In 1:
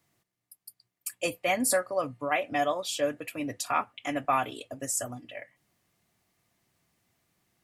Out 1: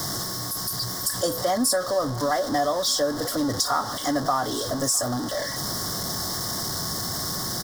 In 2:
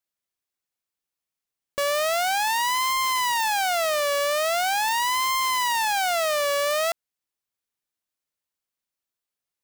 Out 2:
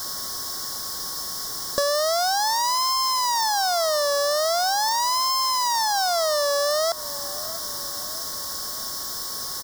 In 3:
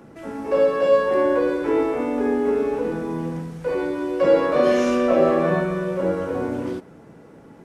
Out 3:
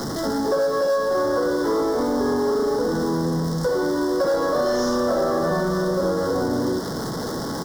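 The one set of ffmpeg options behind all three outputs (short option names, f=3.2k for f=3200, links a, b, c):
-filter_complex "[0:a]aeval=exprs='val(0)+0.5*0.0316*sgn(val(0))':c=same,asplit=2[a][b];[b]acrusher=bits=4:mode=log:mix=0:aa=0.000001,volume=-8dB[c];[a][c]amix=inputs=2:normalize=0,asplit=2[d][e];[e]adelay=655,lowpass=f=1.7k:p=1,volume=-22dB,asplit=2[f][g];[g]adelay=655,lowpass=f=1.7k:p=1,volume=0.52,asplit=2[h][i];[i]adelay=655,lowpass=f=1.7k:p=1,volume=0.52,asplit=2[j][k];[k]adelay=655,lowpass=f=1.7k:p=1,volume=0.52[l];[d][f][h][j][l]amix=inputs=5:normalize=0,acrossover=split=660[m][n];[m]volume=17.5dB,asoftclip=hard,volume=-17.5dB[o];[o][n]amix=inputs=2:normalize=0,asuperstop=centerf=2500:order=4:qfactor=1.4,equalizer=f=5.3k:t=o:w=0.27:g=12.5,acompressor=threshold=-23dB:ratio=4,aeval=exprs='val(0)+0.00562*sin(2*PI*1100*n/s)':c=same,volume=3dB"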